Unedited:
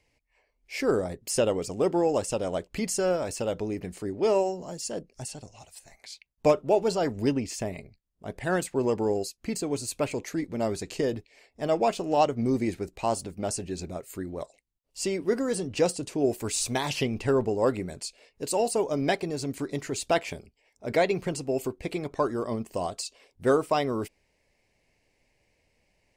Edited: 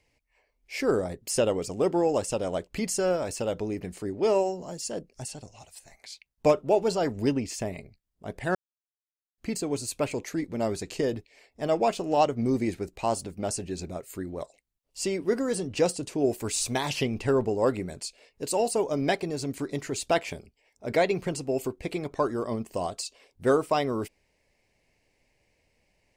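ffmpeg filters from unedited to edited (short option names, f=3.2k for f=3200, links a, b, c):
-filter_complex "[0:a]asplit=3[a][b][c];[a]atrim=end=8.55,asetpts=PTS-STARTPTS,afade=t=out:st=8.546:d=0.004:c=hsin[d];[b]atrim=start=8.55:end=9.38,asetpts=PTS-STARTPTS,volume=0[e];[c]atrim=start=9.38,asetpts=PTS-STARTPTS,afade=t=in:d=0.004:c=hsin[f];[d][e][f]concat=n=3:v=0:a=1"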